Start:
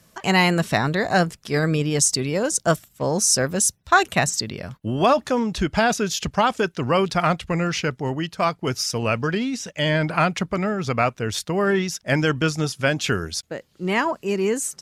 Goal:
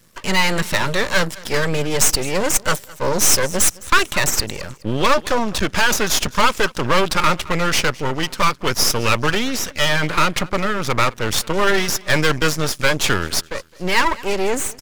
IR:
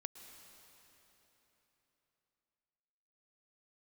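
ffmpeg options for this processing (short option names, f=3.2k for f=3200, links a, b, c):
-filter_complex "[0:a]acrossover=split=640[a][b];[b]dynaudnorm=f=110:g=9:m=11.5dB[c];[a][c]amix=inputs=2:normalize=0,asuperstop=centerf=730:order=12:qfactor=2.8,aecho=1:1:211|422:0.0708|0.0234,acontrast=84,aeval=exprs='max(val(0),0)':c=same,volume=-1dB"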